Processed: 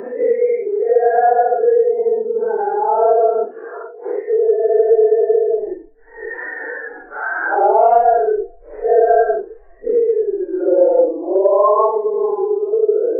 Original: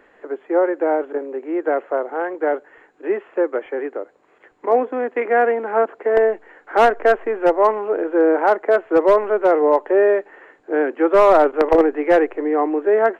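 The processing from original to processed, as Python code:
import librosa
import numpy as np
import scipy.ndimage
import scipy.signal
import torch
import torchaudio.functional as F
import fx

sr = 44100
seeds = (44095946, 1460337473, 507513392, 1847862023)

y = fx.spec_expand(x, sr, power=2.3)
y = fx.paulstretch(y, sr, seeds[0], factor=4.6, window_s=0.05, from_s=5.11)
y = fx.hum_notches(y, sr, base_hz=50, count=4)
y = fx.band_squash(y, sr, depth_pct=70)
y = y * librosa.db_to_amplitude(2.0)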